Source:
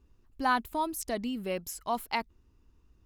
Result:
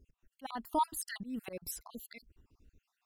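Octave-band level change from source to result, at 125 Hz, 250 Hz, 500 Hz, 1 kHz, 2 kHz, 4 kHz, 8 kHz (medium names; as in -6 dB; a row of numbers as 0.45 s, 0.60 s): -7.5 dB, -7.5 dB, -9.5 dB, -6.0 dB, -13.0 dB, -8.5 dB, -2.0 dB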